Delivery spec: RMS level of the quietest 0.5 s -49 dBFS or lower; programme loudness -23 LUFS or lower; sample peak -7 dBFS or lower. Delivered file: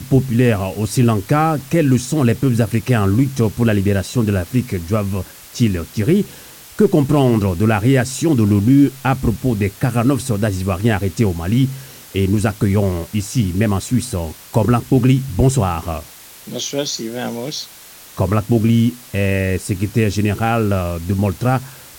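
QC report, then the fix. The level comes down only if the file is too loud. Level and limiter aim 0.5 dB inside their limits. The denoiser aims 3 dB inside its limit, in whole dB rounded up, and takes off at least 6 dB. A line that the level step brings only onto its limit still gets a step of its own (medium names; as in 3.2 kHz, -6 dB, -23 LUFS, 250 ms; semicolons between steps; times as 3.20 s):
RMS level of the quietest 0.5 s -40 dBFS: fail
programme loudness -17.5 LUFS: fail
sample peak -3.0 dBFS: fail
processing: noise reduction 6 dB, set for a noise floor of -40 dBFS; trim -6 dB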